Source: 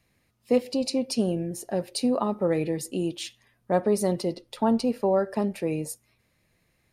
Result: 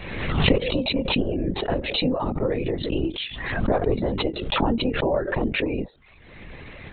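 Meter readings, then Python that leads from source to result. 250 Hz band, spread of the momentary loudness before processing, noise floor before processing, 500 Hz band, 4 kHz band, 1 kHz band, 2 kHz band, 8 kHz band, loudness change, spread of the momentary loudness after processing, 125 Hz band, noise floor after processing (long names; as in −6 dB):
+1.0 dB, 8 LU, −70 dBFS, +1.0 dB, +9.5 dB, +2.5 dB, +13.5 dB, below −40 dB, +2.5 dB, 7 LU, +6.5 dB, −50 dBFS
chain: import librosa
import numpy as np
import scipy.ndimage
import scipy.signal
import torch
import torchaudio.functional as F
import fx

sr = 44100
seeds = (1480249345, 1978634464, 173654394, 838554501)

y = fx.recorder_agc(x, sr, target_db=-16.0, rise_db_per_s=39.0, max_gain_db=30)
y = fx.dereverb_blind(y, sr, rt60_s=0.51)
y = fx.lpc_vocoder(y, sr, seeds[0], excitation='whisper', order=16)
y = fx.pre_swell(y, sr, db_per_s=44.0)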